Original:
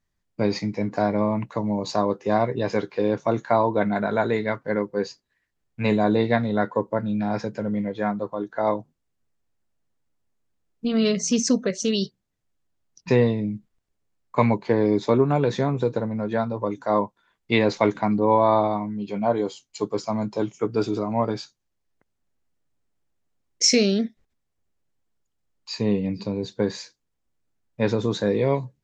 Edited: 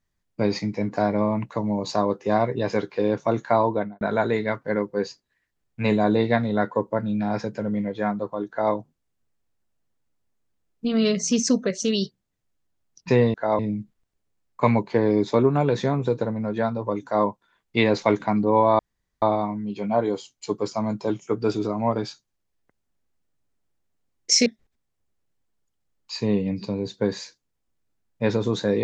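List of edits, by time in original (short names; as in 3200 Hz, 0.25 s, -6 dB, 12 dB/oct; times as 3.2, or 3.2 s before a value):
3.67–4.01 studio fade out
8.49–8.74 copy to 13.34
18.54 insert room tone 0.43 s
23.78–24.04 cut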